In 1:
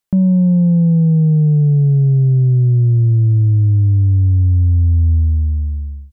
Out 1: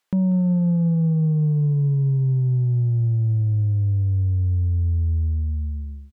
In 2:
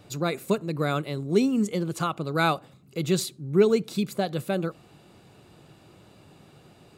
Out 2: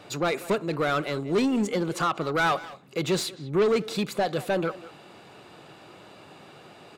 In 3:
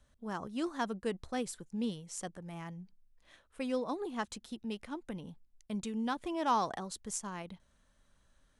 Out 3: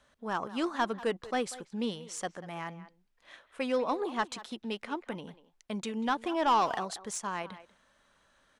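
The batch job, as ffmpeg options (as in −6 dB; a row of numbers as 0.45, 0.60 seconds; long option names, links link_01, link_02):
-filter_complex "[0:a]asplit=2[link_01][link_02];[link_02]highpass=frequency=720:poles=1,volume=23dB,asoftclip=type=tanh:threshold=-8.5dB[link_03];[link_01][link_03]amix=inputs=2:normalize=0,lowpass=frequency=2700:poles=1,volume=-6dB,asplit=2[link_04][link_05];[link_05]adelay=190,highpass=300,lowpass=3400,asoftclip=type=hard:threshold=-18.5dB,volume=-15dB[link_06];[link_04][link_06]amix=inputs=2:normalize=0,volume=-6dB"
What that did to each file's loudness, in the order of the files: −8.0, −0.5, +4.5 LU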